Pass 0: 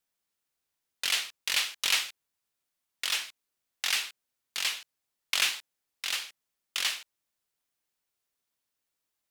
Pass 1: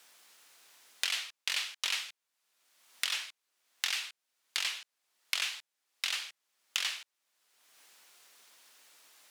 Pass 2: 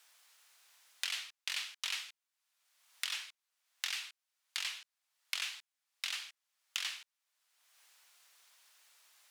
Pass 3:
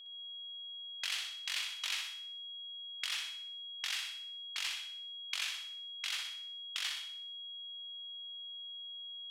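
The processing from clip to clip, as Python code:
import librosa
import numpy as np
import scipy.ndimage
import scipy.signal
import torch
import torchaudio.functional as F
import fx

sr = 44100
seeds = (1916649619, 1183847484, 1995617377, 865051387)

y1 = fx.weighting(x, sr, curve='A')
y1 = fx.band_squash(y1, sr, depth_pct=100)
y1 = F.gain(torch.from_numpy(y1), -4.5).numpy()
y2 = scipy.signal.sosfilt(scipy.signal.butter(2, 720.0, 'highpass', fs=sr, output='sos'), y1)
y2 = F.gain(torch.from_numpy(y2), -5.0).numpy()
y3 = fx.env_lowpass(y2, sr, base_hz=480.0, full_db=-38.5)
y3 = y3 + 10.0 ** (-49.0 / 20.0) * np.sin(2.0 * np.pi * 3300.0 * np.arange(len(y3)) / sr)
y3 = fx.room_flutter(y3, sr, wall_m=10.6, rt60_s=0.59)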